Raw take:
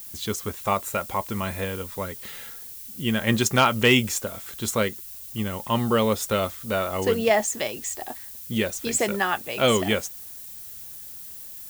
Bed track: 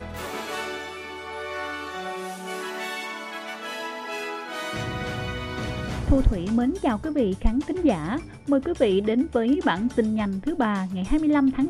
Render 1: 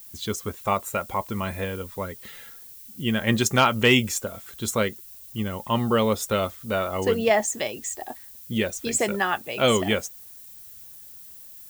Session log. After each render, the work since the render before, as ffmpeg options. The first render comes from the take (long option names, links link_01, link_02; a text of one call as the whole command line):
ffmpeg -i in.wav -af "afftdn=noise_reduction=6:noise_floor=-40" out.wav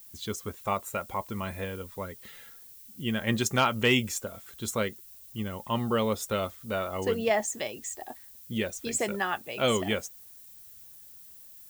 ffmpeg -i in.wav -af "volume=-5.5dB" out.wav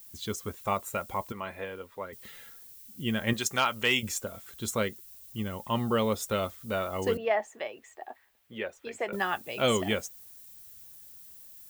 ffmpeg -i in.wav -filter_complex "[0:a]asettb=1/sr,asplit=3[link_01][link_02][link_03];[link_01]atrim=end=1.324[link_04];[link_02]atrim=start=1.32:end=2.13,asetpts=PTS-STARTPTS,afade=type=in:duration=0.004:curve=qsin,afade=type=out:start_time=0.806:duration=0.004:curve=qsin,bass=frequency=250:gain=-13,treble=frequency=4000:gain=-12[link_05];[link_03]atrim=start=2.126[link_06];[link_04][link_05]acrossfade=duration=0.004:curve1=hsin:curve2=qsin[link_07];[link_07][link_06]acrossfade=duration=0.004:curve1=qsin:curve2=hsin,asettb=1/sr,asplit=3[link_08][link_09][link_10];[link_08]atrim=end=3.334[link_11];[link_09]atrim=start=3.33:end=4.03,asetpts=PTS-STARTPTS,afade=type=in:duration=0.004:curve=qsin,afade=type=out:start_time=0.696:duration=0.004:curve=qsin,lowshelf=frequency=460:gain=-11.5[link_12];[link_10]atrim=start=4.026[link_13];[link_11][link_12]acrossfade=duration=0.004:curve1=hsin:curve2=qsin[link_14];[link_14][link_13]acrossfade=duration=0.004:curve1=qsin:curve2=hsin,asettb=1/sr,asplit=3[link_15][link_16][link_17];[link_15]atrim=end=7.174[link_18];[link_16]atrim=start=7.17:end=9.13,asetpts=PTS-STARTPTS,afade=type=in:duration=0.004:curve=qsin,afade=type=out:start_time=1.956:duration=0.004:curve=qsin,acrossover=split=380 2800:gain=0.158 1 0.0891[link_19][link_20][link_21];[link_19][link_20][link_21]amix=inputs=3:normalize=0[link_22];[link_17]atrim=start=9.126[link_23];[link_18][link_22]acrossfade=duration=0.004:curve1=hsin:curve2=qsin[link_24];[link_24][link_23]acrossfade=duration=0.004:curve1=qsin:curve2=hsin" out.wav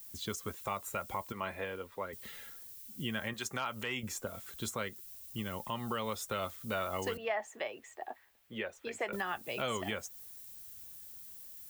ffmpeg -i in.wav -filter_complex "[0:a]acrossover=split=110|820|1700[link_01][link_02][link_03][link_04];[link_01]acompressor=threshold=-51dB:ratio=4[link_05];[link_02]acompressor=threshold=-38dB:ratio=4[link_06];[link_03]acompressor=threshold=-33dB:ratio=4[link_07];[link_04]acompressor=threshold=-39dB:ratio=4[link_08];[link_05][link_06][link_07][link_08]amix=inputs=4:normalize=0,alimiter=limit=-24dB:level=0:latency=1:release=195" out.wav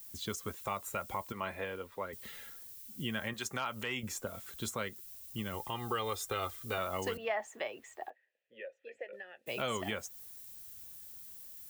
ffmpeg -i in.wav -filter_complex "[0:a]asettb=1/sr,asplit=3[link_01][link_02][link_03];[link_01]atrim=end=5.544[link_04];[link_02]atrim=start=5.54:end=6.78,asetpts=PTS-STARTPTS,afade=type=in:duration=0.004:curve=qsin,afade=type=out:start_time=1.236:duration=0.004:curve=qsin,aecho=1:1:2.5:0.65,atrim=end_sample=54684[link_05];[link_03]atrim=start=6.776[link_06];[link_04][link_05]acrossfade=duration=0.004:curve1=hsin:curve2=qsin[link_07];[link_07][link_06]acrossfade=duration=0.004:curve1=qsin:curve2=hsin,asplit=3[link_08][link_09][link_10];[link_08]afade=type=out:start_time=8.09:duration=0.02[link_11];[link_09]asplit=3[link_12][link_13][link_14];[link_12]bandpass=frequency=530:width_type=q:width=8,volume=0dB[link_15];[link_13]bandpass=frequency=1840:width_type=q:width=8,volume=-6dB[link_16];[link_14]bandpass=frequency=2480:width_type=q:width=8,volume=-9dB[link_17];[link_15][link_16][link_17]amix=inputs=3:normalize=0,afade=type=in:start_time=8.09:duration=0.02,afade=type=out:start_time=9.46:duration=0.02[link_18];[link_10]afade=type=in:start_time=9.46:duration=0.02[link_19];[link_11][link_18][link_19]amix=inputs=3:normalize=0" out.wav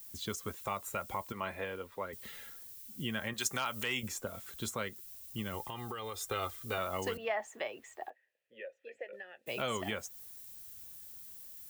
ffmpeg -i in.wav -filter_complex "[0:a]asettb=1/sr,asplit=3[link_01][link_02][link_03];[link_01]atrim=end=3.384[link_04];[link_02]atrim=start=3.38:end=4.08,asetpts=PTS-STARTPTS,afade=type=in:duration=0.004:curve=qsin,afade=type=out:start_time=0.696:duration=0.004:curve=qsin,highshelf=frequency=3500:gain=9[link_05];[link_03]atrim=start=4.076[link_06];[link_04][link_05]acrossfade=duration=0.004:curve1=hsin:curve2=qsin[link_07];[link_07][link_06]acrossfade=duration=0.004:curve1=qsin:curve2=hsin,asettb=1/sr,asplit=3[link_08][link_09][link_10];[link_08]atrim=end=5.664[link_11];[link_09]atrim=start=5.66:end=6.21,asetpts=PTS-STARTPTS,afade=type=in:duration=0.004:curve=qsin,afade=type=out:start_time=0.546:duration=0.004:curve=qsin,acompressor=threshold=-37dB:ratio=5:attack=3.2:release=140:knee=1:detection=peak[link_12];[link_10]atrim=start=6.206[link_13];[link_11][link_12]acrossfade=duration=0.004:curve1=hsin:curve2=qsin[link_14];[link_14][link_13]acrossfade=duration=0.004:curve1=qsin:curve2=hsin" out.wav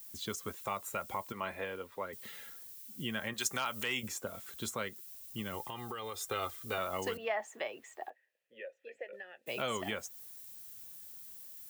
ffmpeg -i in.wav -af "highpass=frequency=120:poles=1" out.wav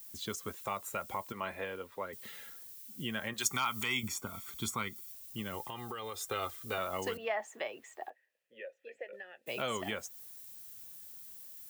ffmpeg -i in.wav -filter_complex "[0:a]asettb=1/sr,asplit=3[link_01][link_02][link_03];[link_01]atrim=end=3.434[link_04];[link_02]atrim=start=3.43:end=5.12,asetpts=PTS-STARTPTS,afade=type=in:duration=0.004:curve=qsin,afade=type=out:start_time=1.686:duration=0.004:curve=qsin,aecho=1:1:0.9:0.75,atrim=end_sample=74529[link_05];[link_03]atrim=start=5.116[link_06];[link_04][link_05]acrossfade=duration=0.004:curve1=hsin:curve2=qsin[link_07];[link_07][link_06]acrossfade=duration=0.004:curve1=qsin:curve2=hsin" out.wav